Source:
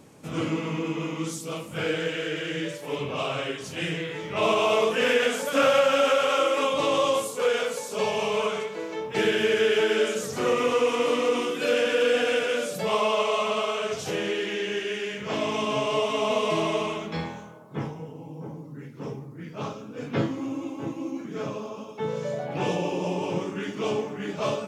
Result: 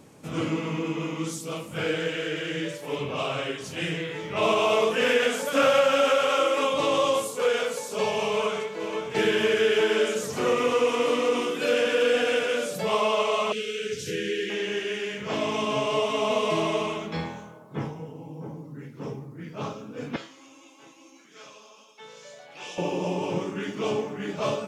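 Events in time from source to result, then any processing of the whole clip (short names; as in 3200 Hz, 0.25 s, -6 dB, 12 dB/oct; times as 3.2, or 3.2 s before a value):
8.3–8.84 echo throw 0.5 s, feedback 80%, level -9 dB
13.52–14.5 elliptic band-stop 470–1600 Hz
20.16–22.78 band-pass 5700 Hz, Q 0.65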